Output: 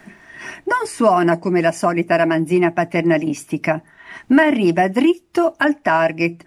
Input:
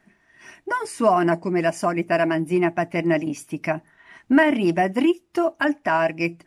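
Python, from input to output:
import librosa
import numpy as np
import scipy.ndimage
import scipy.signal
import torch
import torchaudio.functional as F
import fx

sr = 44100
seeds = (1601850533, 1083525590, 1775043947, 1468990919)

y = fx.band_squash(x, sr, depth_pct=40)
y = y * 10.0 ** (4.5 / 20.0)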